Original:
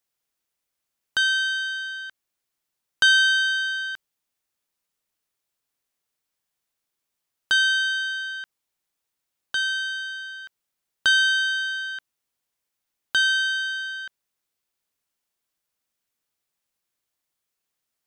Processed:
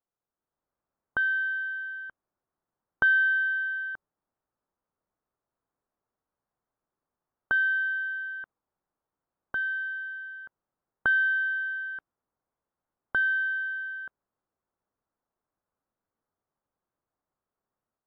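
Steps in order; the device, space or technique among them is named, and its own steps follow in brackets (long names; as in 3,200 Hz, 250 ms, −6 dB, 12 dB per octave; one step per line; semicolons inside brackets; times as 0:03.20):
action camera in a waterproof case (low-pass filter 1,300 Hz 24 dB per octave; automatic gain control gain up to 6.5 dB; level −2.5 dB; AAC 64 kbit/s 48,000 Hz)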